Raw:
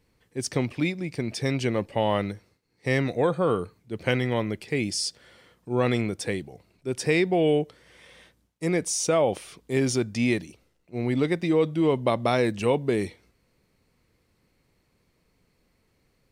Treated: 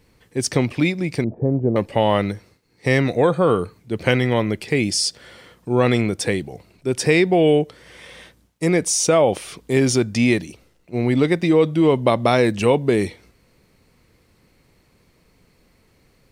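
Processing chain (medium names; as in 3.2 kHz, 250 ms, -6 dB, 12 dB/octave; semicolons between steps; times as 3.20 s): 1.24–1.76 s: inverse Chebyshev low-pass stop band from 4.3 kHz, stop band 80 dB; in parallel at -2 dB: compression, threshold -32 dBFS, peak gain reduction 14 dB; on the sum: trim +5 dB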